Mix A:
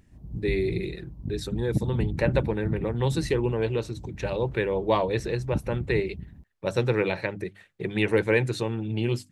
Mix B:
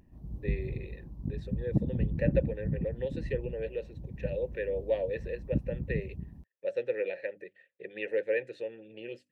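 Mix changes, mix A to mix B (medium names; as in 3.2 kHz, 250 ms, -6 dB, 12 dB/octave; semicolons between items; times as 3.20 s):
speech: add vowel filter e; master: add peaking EQ 100 Hz -4 dB 0.59 oct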